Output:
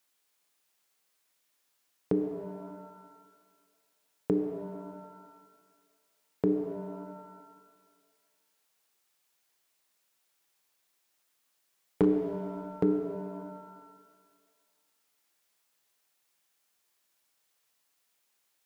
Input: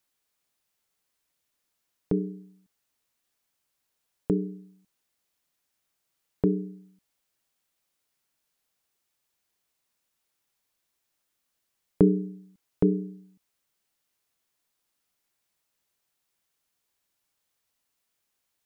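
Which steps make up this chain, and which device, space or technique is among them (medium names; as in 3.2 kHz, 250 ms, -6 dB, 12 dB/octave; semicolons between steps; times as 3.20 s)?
high-pass 78 Hz; bass shelf 210 Hz -10.5 dB; clipper into limiter (hard clipper -15 dBFS, distortion -21 dB; peak limiter -18.5 dBFS, peak gain reduction 3.5 dB); pitch-shifted reverb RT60 1.8 s, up +7 st, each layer -8 dB, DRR 5.5 dB; trim +3 dB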